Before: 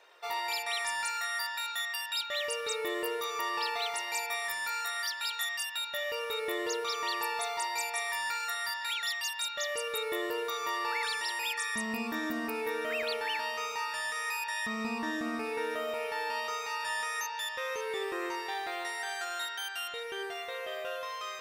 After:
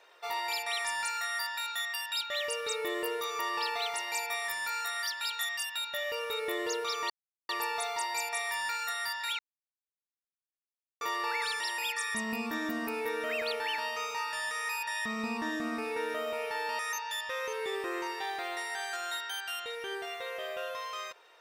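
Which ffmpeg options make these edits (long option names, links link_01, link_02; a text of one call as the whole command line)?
ffmpeg -i in.wav -filter_complex "[0:a]asplit=5[link_01][link_02][link_03][link_04][link_05];[link_01]atrim=end=7.1,asetpts=PTS-STARTPTS,afade=type=out:start_time=7.096:duration=0.004:curve=hsin,apad=pad_dur=0.39[link_06];[link_02]atrim=start=7.1:end=9,asetpts=PTS-STARTPTS,afade=type=in:duration=0.004:curve=hsin,afade=type=out:start_time=1.896:duration=0.004:curve=hsin[link_07];[link_03]atrim=start=9:end=10.62,asetpts=PTS-STARTPTS,volume=0[link_08];[link_04]atrim=start=10.62:end=16.402,asetpts=PTS-STARTPTS,afade=type=in:duration=0.004:curve=hsin[link_09];[link_05]atrim=start=17.068[link_10];[link_06][link_07][link_08][link_09]concat=n=4:v=0:a=1[link_11];[link_11][link_10]acrossfade=duration=0.004:curve1=hsin:curve2=hsin" out.wav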